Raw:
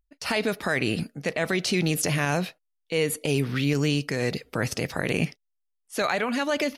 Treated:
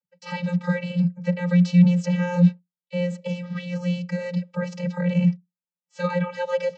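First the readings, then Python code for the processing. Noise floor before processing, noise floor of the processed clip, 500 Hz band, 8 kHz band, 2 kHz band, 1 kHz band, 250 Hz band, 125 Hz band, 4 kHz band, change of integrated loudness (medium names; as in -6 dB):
-77 dBFS, under -85 dBFS, -1.0 dB, under -15 dB, -6.5 dB, -3.0 dB, +6.5 dB, +7.0 dB, -9.5 dB, +3.0 dB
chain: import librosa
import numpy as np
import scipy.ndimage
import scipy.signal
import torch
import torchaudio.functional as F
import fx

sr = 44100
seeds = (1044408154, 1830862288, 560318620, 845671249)

y = fx.vocoder(x, sr, bands=32, carrier='square', carrier_hz=177.0)
y = y * librosa.db_to_amplitude(5.0)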